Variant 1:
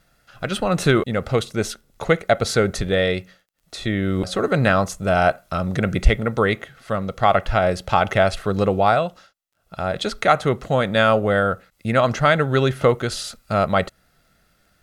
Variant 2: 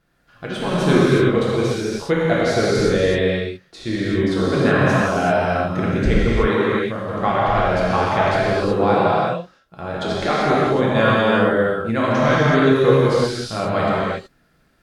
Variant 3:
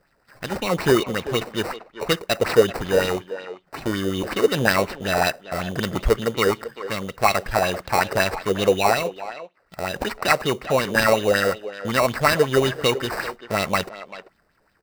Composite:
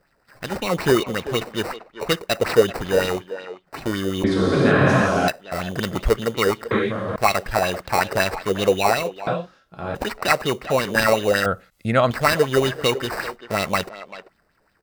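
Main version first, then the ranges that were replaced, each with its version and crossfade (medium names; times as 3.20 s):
3
4.24–5.28 s: from 2
6.71–7.16 s: from 2
9.27–9.95 s: from 2
11.46–12.11 s: from 1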